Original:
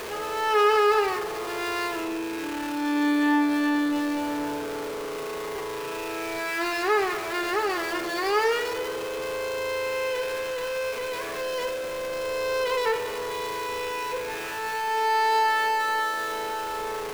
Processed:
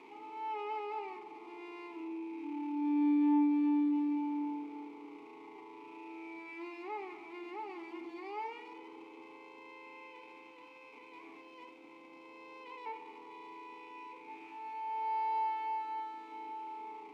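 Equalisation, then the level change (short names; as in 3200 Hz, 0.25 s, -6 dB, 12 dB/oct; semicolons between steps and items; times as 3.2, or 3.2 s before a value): vowel filter u; HPF 130 Hz 12 dB/oct; -4.5 dB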